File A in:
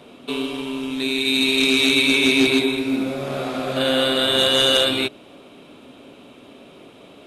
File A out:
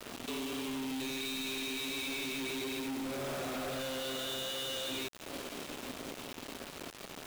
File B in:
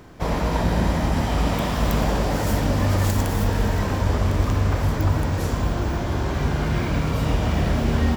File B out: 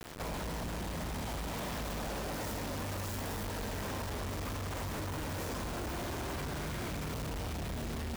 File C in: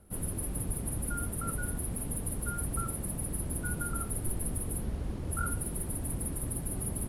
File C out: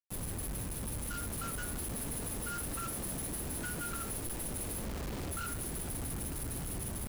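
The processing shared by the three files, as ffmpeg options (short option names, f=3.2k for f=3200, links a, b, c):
-filter_complex "[0:a]acrossover=split=220[a][b];[b]dynaudnorm=f=110:g=31:m=7dB[c];[a][c]amix=inputs=2:normalize=0,alimiter=limit=-11dB:level=0:latency=1:release=29,acompressor=threshold=-30dB:ratio=8,asoftclip=type=tanh:threshold=-38dB,acrusher=bits=6:mix=0:aa=0.000001"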